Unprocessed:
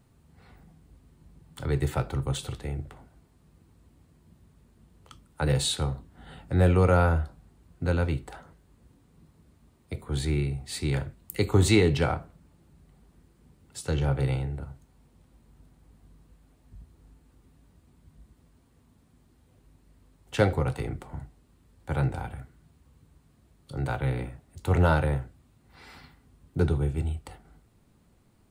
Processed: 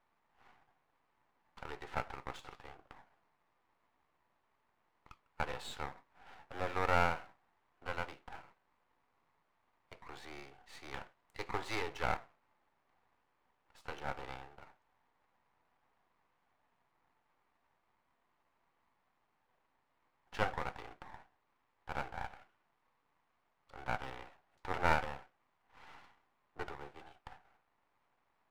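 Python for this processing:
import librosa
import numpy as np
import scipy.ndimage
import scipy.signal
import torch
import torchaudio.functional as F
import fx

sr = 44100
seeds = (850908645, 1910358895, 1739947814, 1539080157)

y = fx.ladder_bandpass(x, sr, hz=1100.0, resonance_pct=40)
y = np.maximum(y, 0.0)
y = y * librosa.db_to_amplitude(10.0)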